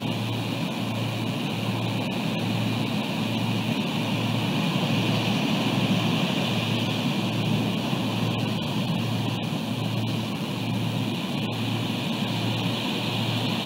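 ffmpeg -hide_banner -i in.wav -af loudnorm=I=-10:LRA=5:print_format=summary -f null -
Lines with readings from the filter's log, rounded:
Input Integrated:    -26.1 LUFS
Input True Peak:     -10.5 dBTP
Input LRA:             2.8 LU
Input Threshold:     -36.1 LUFS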